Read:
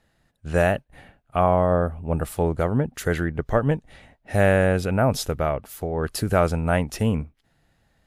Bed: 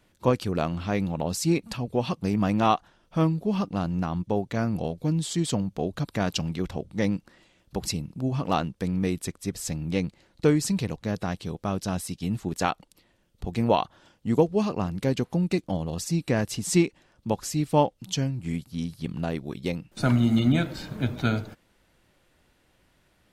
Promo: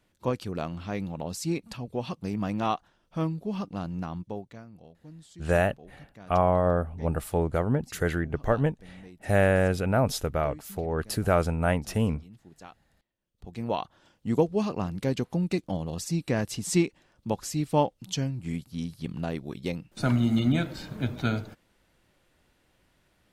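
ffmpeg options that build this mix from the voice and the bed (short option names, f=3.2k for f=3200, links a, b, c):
-filter_complex "[0:a]adelay=4950,volume=-3.5dB[a];[1:a]volume=13.5dB,afade=t=out:st=4.1:d=0.54:silence=0.158489,afade=t=in:st=13.16:d=1.12:silence=0.105925[b];[a][b]amix=inputs=2:normalize=0"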